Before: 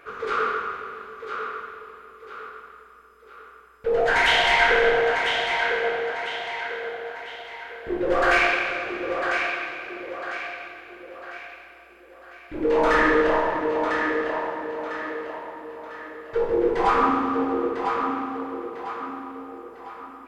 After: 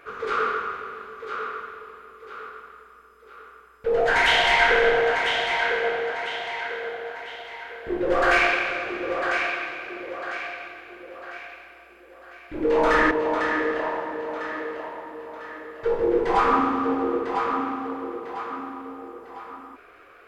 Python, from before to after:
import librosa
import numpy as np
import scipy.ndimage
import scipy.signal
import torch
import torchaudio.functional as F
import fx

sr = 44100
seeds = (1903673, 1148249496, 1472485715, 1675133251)

y = fx.edit(x, sr, fx.cut(start_s=13.11, length_s=0.5), tone=tone)